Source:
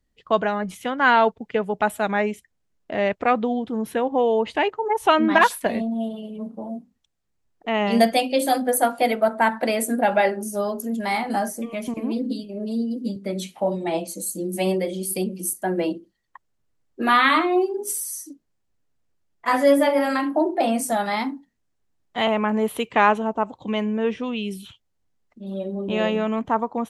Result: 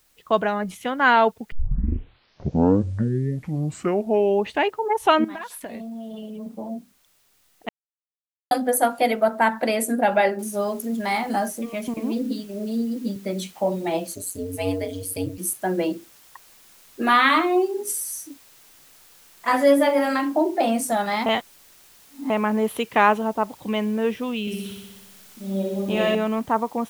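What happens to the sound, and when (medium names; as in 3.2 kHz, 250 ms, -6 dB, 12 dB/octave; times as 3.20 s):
1.52 s: tape start 3.13 s
5.24–6.46 s: compression 8:1, threshold -31 dBFS
7.69–8.51 s: mute
10.39 s: noise floor step -63 dB -52 dB
14.15–15.38 s: ring modulator 91 Hz
21.26–22.30 s: reverse
24.41–26.15 s: flutter echo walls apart 10.6 m, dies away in 1.2 s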